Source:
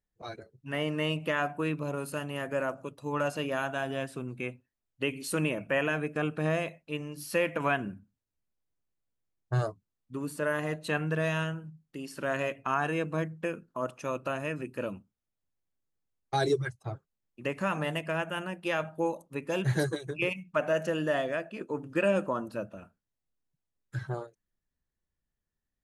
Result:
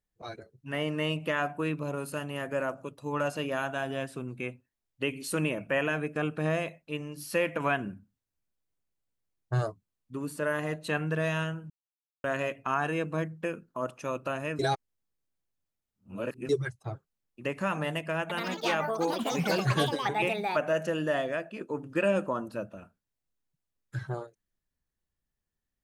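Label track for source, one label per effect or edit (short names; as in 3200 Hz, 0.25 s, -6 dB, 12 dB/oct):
11.700000	12.240000	mute
14.590000	16.490000	reverse
18.210000	21.240000	echoes that change speed 86 ms, each echo +5 st, echoes 3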